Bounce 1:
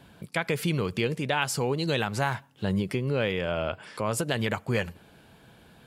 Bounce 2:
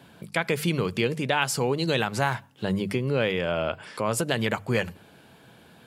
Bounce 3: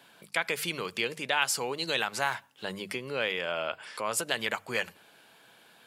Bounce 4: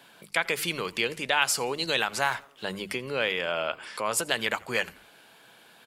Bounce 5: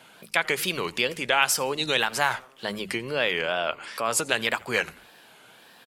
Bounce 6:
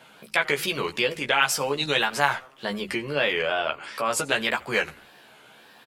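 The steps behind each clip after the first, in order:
high-pass 95 Hz; hum notches 50/100/150/200 Hz; trim +2.5 dB
high-pass 1.1 kHz 6 dB/octave
frequency-shifting echo 85 ms, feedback 45%, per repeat -140 Hz, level -24 dB; trim +3 dB
wow and flutter 130 cents; trim +2.5 dB
peaking EQ 11 kHz -5 dB 1.8 oct; doubling 14 ms -4 dB

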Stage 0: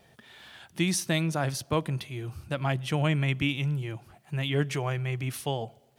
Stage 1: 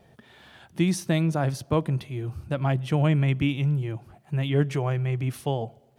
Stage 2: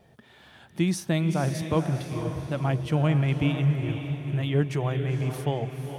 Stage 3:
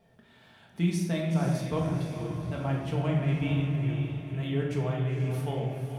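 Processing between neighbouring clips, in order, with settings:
tilt shelf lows +5 dB, about 1.2 kHz
echo that smears into a reverb 489 ms, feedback 46%, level -7 dB; trim -1.5 dB
simulated room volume 530 m³, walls mixed, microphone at 1.6 m; trim -8 dB

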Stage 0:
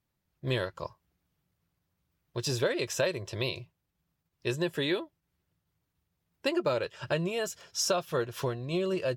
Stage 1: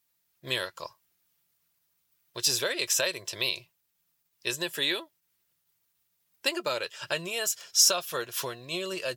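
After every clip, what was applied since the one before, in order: tilt EQ +4 dB/octave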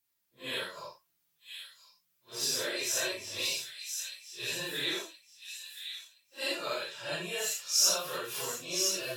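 phase randomisation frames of 200 ms; on a send: feedback echo behind a high-pass 1022 ms, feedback 30%, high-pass 3 kHz, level -5 dB; on the sum: flange 0.33 Hz, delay 2.6 ms, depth 4.5 ms, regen -45%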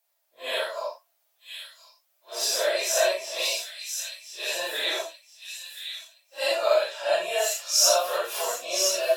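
resonant high-pass 650 Hz, resonance Q 5.8; trim +5 dB

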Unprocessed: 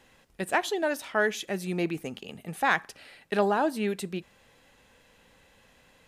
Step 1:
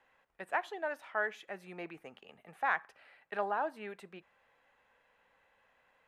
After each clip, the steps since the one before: three-band isolator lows -16 dB, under 570 Hz, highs -19 dB, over 2.3 kHz; trim -5 dB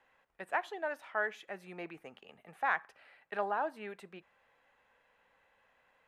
no audible change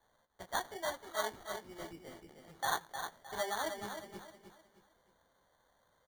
chorus voices 2, 1.2 Hz, delay 16 ms, depth 3 ms; sample-and-hold 17×; on a send: feedback delay 309 ms, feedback 34%, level -7.5 dB

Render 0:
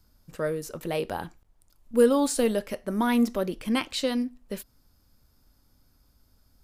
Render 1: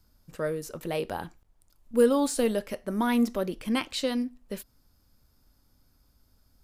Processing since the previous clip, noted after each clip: de-esser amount 45%; trim -1.5 dB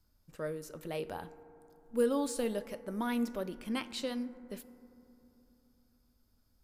FDN reverb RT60 3.2 s, low-frequency decay 1.25×, high-frequency decay 0.25×, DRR 14.5 dB; trim -8 dB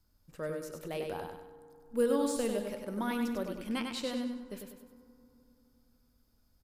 feedback delay 98 ms, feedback 41%, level -5 dB

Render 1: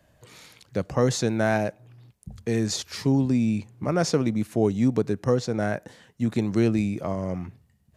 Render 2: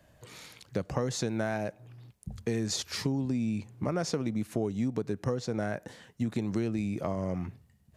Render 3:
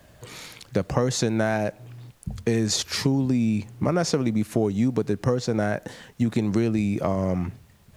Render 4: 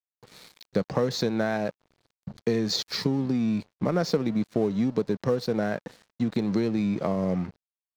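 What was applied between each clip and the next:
compression, threshold -27 dBFS, peak gain reduction 11 dB
added noise pink -69 dBFS; trim +8 dB
cabinet simulation 130–5600 Hz, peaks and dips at 190 Hz +5 dB, 470 Hz +4 dB, 2.8 kHz -5 dB, 4.2 kHz +7 dB; crossover distortion -40.5 dBFS; trim -3 dB

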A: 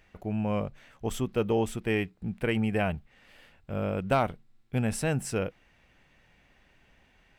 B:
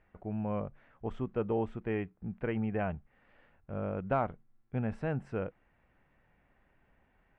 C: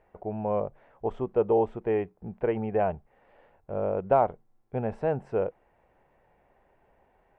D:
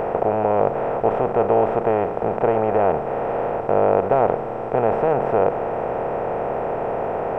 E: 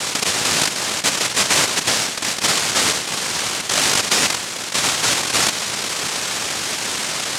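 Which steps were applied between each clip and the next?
Chebyshev low-pass 1.4 kHz, order 2; trim -4.5 dB
high-order bell 600 Hz +10 dB
spectral levelling over time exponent 0.2
noise-vocoded speech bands 1

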